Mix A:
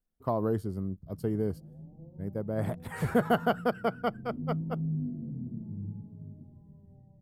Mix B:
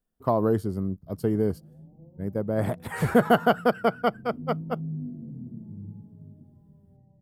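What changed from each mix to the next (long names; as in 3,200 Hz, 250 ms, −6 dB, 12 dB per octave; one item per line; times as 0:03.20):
speech +6.5 dB
master: add low-shelf EQ 79 Hz −6.5 dB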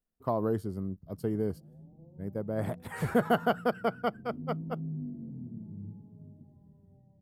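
speech −6.5 dB
background: send −8.0 dB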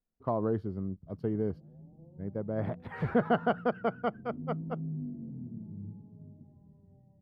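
speech: add high-frequency loss of the air 300 metres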